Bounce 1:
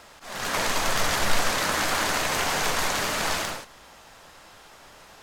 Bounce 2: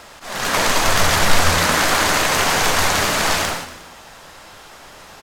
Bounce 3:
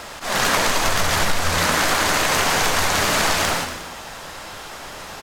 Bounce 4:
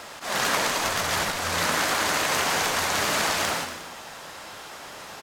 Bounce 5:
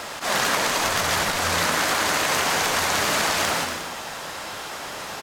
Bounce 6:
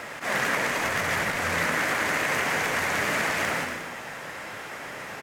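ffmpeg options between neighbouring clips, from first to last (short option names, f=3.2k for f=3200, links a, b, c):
-filter_complex "[0:a]asplit=5[a][b][c][d][e];[b]adelay=119,afreqshift=80,volume=-12dB[f];[c]adelay=238,afreqshift=160,volume=-19.1dB[g];[d]adelay=357,afreqshift=240,volume=-26.3dB[h];[e]adelay=476,afreqshift=320,volume=-33.4dB[i];[a][f][g][h][i]amix=inputs=5:normalize=0,volume=8dB"
-af "acompressor=threshold=-21dB:ratio=10,volume=6dB"
-af "highpass=f=150:p=1,volume=-5dB"
-af "acompressor=threshold=-27dB:ratio=3,volume=7dB"
-af "equalizer=f=125:t=o:w=1:g=8,equalizer=f=250:t=o:w=1:g=5,equalizer=f=500:t=o:w=1:g=5,equalizer=f=2k:t=o:w=1:g=11,equalizer=f=4k:t=o:w=1:g=-5,volume=-9dB"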